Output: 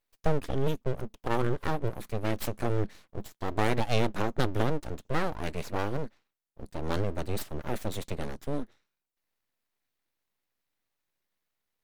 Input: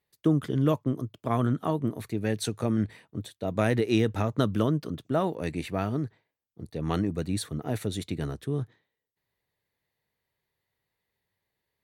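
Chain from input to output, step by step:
time-frequency box erased 0:00.55–0:00.82, 360–1,600 Hz
full-wave rectification

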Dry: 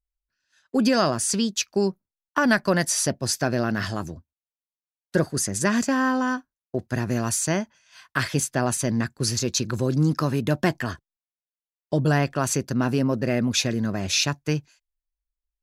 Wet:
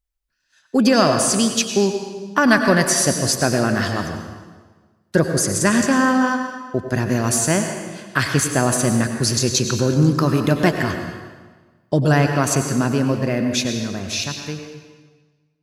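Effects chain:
fade-out on the ending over 3.45 s
on a send: convolution reverb RT60 1.4 s, pre-delay 87 ms, DRR 5 dB
on the sum: level +5 dB

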